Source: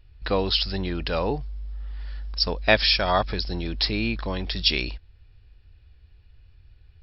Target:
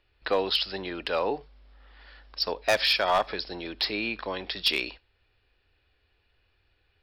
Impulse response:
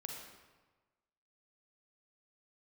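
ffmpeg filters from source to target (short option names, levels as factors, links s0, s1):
-filter_complex "[0:a]acrossover=split=300 4700:gain=0.1 1 0.178[s0][s1][s2];[s0][s1][s2]amix=inputs=3:normalize=0,volume=6.31,asoftclip=hard,volume=0.158,asplit=2[s3][s4];[1:a]atrim=start_sample=2205,atrim=end_sample=3969,adelay=10[s5];[s4][s5]afir=irnorm=-1:irlink=0,volume=0.178[s6];[s3][s6]amix=inputs=2:normalize=0"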